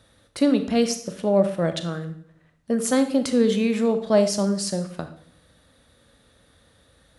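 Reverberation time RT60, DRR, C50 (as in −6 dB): 0.60 s, 8.5 dB, 10.5 dB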